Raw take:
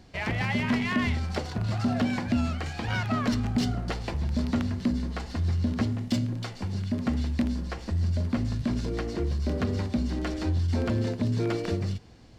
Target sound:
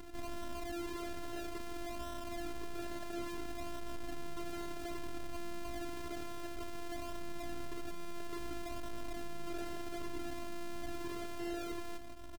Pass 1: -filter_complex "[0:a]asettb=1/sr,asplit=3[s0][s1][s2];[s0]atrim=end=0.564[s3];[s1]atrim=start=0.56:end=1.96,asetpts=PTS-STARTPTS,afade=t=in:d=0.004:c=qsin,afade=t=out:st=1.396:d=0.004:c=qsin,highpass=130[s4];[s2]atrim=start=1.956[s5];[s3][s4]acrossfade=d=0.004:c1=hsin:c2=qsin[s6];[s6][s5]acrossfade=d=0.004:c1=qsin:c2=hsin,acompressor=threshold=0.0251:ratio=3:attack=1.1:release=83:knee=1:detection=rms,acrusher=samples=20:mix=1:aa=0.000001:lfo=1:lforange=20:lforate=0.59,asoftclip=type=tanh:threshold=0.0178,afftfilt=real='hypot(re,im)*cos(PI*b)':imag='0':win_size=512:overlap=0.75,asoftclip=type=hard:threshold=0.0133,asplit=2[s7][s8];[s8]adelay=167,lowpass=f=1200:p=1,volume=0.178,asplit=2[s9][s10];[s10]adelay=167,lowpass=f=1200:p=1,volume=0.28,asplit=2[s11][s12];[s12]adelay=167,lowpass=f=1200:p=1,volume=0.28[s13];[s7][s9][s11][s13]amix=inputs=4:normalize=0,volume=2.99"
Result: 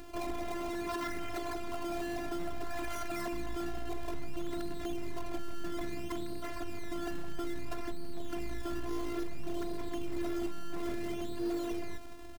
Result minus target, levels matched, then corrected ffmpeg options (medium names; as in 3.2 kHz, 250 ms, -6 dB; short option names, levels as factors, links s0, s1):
decimation with a swept rate: distortion -9 dB; saturation: distortion -6 dB
-filter_complex "[0:a]asettb=1/sr,asplit=3[s0][s1][s2];[s0]atrim=end=0.564[s3];[s1]atrim=start=0.56:end=1.96,asetpts=PTS-STARTPTS,afade=t=in:d=0.004:c=qsin,afade=t=out:st=1.396:d=0.004:c=qsin,highpass=130[s4];[s2]atrim=start=1.956[s5];[s3][s4]acrossfade=d=0.004:c1=hsin:c2=qsin[s6];[s6][s5]acrossfade=d=0.004:c1=qsin:c2=hsin,acompressor=threshold=0.0251:ratio=3:attack=1.1:release=83:knee=1:detection=rms,acrusher=samples=73:mix=1:aa=0.000001:lfo=1:lforange=73:lforate=0.59,asoftclip=type=tanh:threshold=0.00631,afftfilt=real='hypot(re,im)*cos(PI*b)':imag='0':win_size=512:overlap=0.75,asoftclip=type=hard:threshold=0.0133,asplit=2[s7][s8];[s8]adelay=167,lowpass=f=1200:p=1,volume=0.178,asplit=2[s9][s10];[s10]adelay=167,lowpass=f=1200:p=1,volume=0.28,asplit=2[s11][s12];[s12]adelay=167,lowpass=f=1200:p=1,volume=0.28[s13];[s7][s9][s11][s13]amix=inputs=4:normalize=0,volume=2.99"